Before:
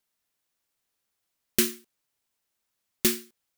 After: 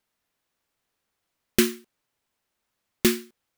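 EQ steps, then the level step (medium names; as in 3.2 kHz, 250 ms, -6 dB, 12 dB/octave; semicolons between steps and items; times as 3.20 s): treble shelf 3.7 kHz -9.5 dB; +6.5 dB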